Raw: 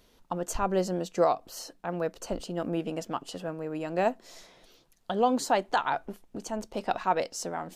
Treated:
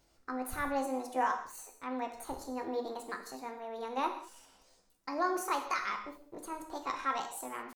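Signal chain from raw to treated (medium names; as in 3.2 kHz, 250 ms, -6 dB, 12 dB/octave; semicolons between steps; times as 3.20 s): pitch shift +6.5 st; gated-style reverb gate 230 ms falling, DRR 4 dB; trim -8 dB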